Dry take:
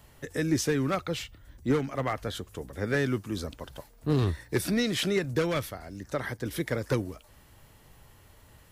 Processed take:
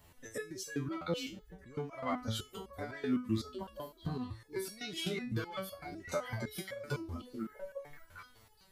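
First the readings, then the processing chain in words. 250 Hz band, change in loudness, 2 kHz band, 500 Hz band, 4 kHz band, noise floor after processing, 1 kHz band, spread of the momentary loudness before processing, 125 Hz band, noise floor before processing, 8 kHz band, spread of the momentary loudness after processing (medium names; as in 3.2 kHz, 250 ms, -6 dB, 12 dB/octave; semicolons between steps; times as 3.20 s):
-8.5 dB, -9.5 dB, -10.0 dB, -10.0 dB, -7.0 dB, -63 dBFS, -6.5 dB, 13 LU, -10.0 dB, -57 dBFS, -9.0 dB, 10 LU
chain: repeats whose band climbs or falls 418 ms, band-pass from 250 Hz, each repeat 1.4 oct, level -8 dB; compression 6:1, threshold -36 dBFS, peak gain reduction 14.5 dB; spectral noise reduction 10 dB; resonator arpeggio 7.9 Hz 85–560 Hz; trim +14.5 dB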